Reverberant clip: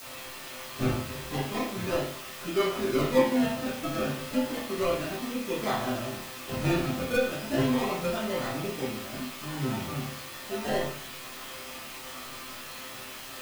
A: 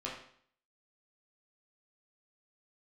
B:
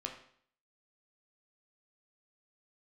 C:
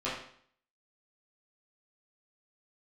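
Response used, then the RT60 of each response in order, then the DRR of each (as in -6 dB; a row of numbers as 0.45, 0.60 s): C; 0.60, 0.60, 0.60 s; -5.5, 1.0, -10.5 dB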